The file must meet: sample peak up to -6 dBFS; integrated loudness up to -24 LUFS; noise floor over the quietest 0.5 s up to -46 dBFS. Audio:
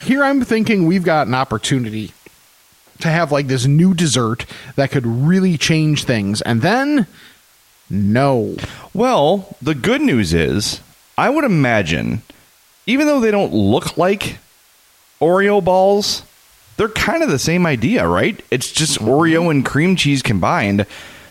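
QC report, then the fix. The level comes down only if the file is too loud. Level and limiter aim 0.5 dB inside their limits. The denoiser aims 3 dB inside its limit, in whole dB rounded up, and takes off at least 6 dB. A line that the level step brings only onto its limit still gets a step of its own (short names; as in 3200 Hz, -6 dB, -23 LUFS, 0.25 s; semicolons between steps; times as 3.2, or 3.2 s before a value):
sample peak -4.0 dBFS: fail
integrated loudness -16.0 LUFS: fail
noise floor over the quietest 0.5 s -52 dBFS: OK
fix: gain -8.5 dB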